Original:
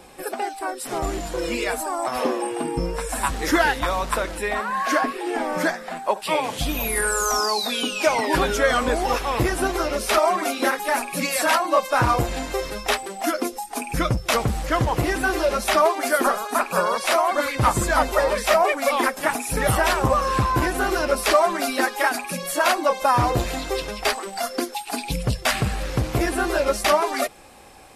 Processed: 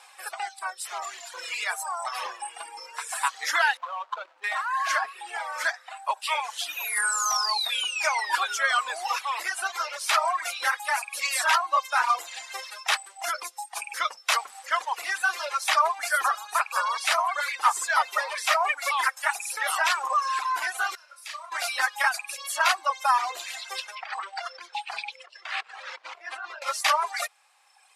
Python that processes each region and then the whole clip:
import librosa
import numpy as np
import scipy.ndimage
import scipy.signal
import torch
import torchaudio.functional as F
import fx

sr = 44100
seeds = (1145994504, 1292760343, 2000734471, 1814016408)

y = fx.chain(x, sr, fx.median_filter(points=25),
    fx.peak_eq(hz=11000.0, db=-14.0, octaves=1.7), at=(3.77, 4.44))
y = fx.chain(y, sr, fx.lowpass(hz=1400.0, slope=6),
    fx.differentiator(),
    fx.room_flutter(wall_m=5.6, rt60_s=0.35), at=(20.95, 21.52))
y = fx.chain(y, sr, fx.over_compress(threshold_db=-28.0, ratio=-1.0),
    fx.bandpass_edges(low_hz=150.0, high_hz=3500.0), at=(23.95, 26.62))
y = scipy.signal.sosfilt(scipy.signal.butter(4, 890.0, 'highpass', fs=sr, output='sos'), y)
y = fx.dereverb_blind(y, sr, rt60_s=1.7)
y = scipy.signal.sosfilt(scipy.signal.butter(2, 10000.0, 'lowpass', fs=sr, output='sos'), y)